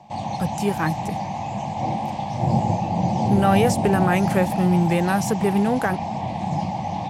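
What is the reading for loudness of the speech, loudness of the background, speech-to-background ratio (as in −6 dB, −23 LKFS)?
−22.0 LKFS, −25.0 LKFS, 3.0 dB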